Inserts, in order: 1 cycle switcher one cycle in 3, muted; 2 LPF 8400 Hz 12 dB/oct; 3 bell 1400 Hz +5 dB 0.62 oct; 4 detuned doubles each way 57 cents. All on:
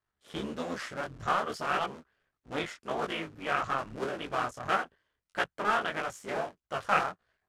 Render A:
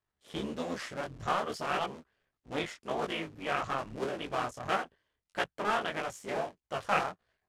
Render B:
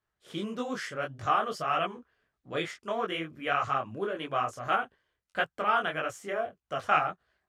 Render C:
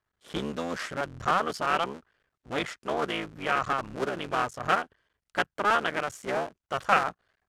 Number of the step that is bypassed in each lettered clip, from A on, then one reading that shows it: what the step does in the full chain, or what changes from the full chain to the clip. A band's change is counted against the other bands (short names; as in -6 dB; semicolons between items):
3, 2 kHz band -3.0 dB; 1, crest factor change -2.0 dB; 4, loudness change +3.5 LU